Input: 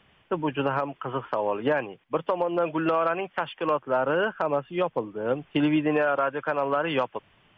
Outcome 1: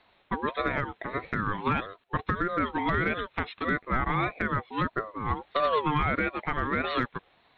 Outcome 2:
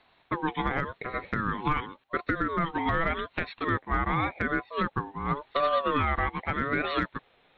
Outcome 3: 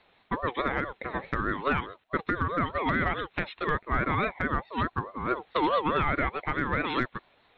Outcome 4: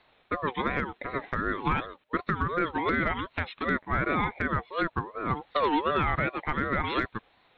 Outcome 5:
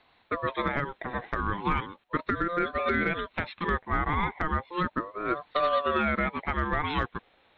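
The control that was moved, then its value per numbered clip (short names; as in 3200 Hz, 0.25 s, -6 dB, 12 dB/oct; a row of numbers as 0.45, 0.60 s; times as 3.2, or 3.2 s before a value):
ring modulator with a swept carrier, at: 1.6, 0.88, 4.7, 2.7, 0.36 Hz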